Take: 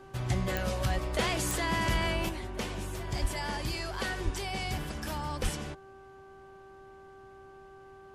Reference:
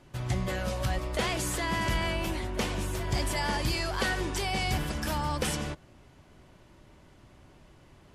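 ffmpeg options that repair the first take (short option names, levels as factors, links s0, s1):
-filter_complex "[0:a]adeclick=t=4,bandreject=f=388.3:t=h:w=4,bandreject=f=776.6:t=h:w=4,bandreject=f=1164.9:t=h:w=4,bandreject=f=1553.2:t=h:w=4,asplit=3[s0][s1][s2];[s0]afade=t=out:st=3.21:d=0.02[s3];[s1]highpass=f=140:w=0.5412,highpass=f=140:w=1.3066,afade=t=in:st=3.21:d=0.02,afade=t=out:st=3.33:d=0.02[s4];[s2]afade=t=in:st=3.33:d=0.02[s5];[s3][s4][s5]amix=inputs=3:normalize=0,asplit=3[s6][s7][s8];[s6]afade=t=out:st=4.24:d=0.02[s9];[s7]highpass=f=140:w=0.5412,highpass=f=140:w=1.3066,afade=t=in:st=4.24:d=0.02,afade=t=out:st=4.36:d=0.02[s10];[s8]afade=t=in:st=4.36:d=0.02[s11];[s9][s10][s11]amix=inputs=3:normalize=0,asplit=3[s12][s13][s14];[s12]afade=t=out:st=5.42:d=0.02[s15];[s13]highpass=f=140:w=0.5412,highpass=f=140:w=1.3066,afade=t=in:st=5.42:d=0.02,afade=t=out:st=5.54:d=0.02[s16];[s14]afade=t=in:st=5.54:d=0.02[s17];[s15][s16][s17]amix=inputs=3:normalize=0,asetnsamples=n=441:p=0,asendcmd='2.29 volume volume 5dB',volume=1"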